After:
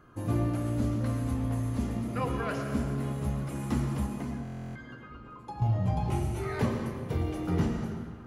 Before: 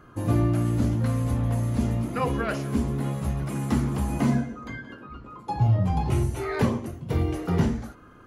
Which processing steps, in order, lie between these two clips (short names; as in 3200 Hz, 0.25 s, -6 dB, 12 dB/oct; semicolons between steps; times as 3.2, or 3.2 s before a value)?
4.06–5.62 compressor 2:1, threshold -36 dBFS, peak gain reduction 10 dB; digital reverb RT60 1.8 s, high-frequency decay 0.8×, pre-delay 65 ms, DRR 4.5 dB; stuck buffer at 4.43, samples 1024, times 13; gain -6 dB